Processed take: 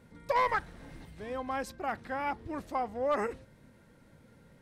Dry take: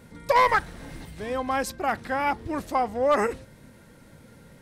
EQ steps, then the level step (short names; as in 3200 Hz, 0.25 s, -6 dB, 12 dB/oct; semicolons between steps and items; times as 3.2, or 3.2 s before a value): high shelf 4600 Hz -6.5 dB; -8.0 dB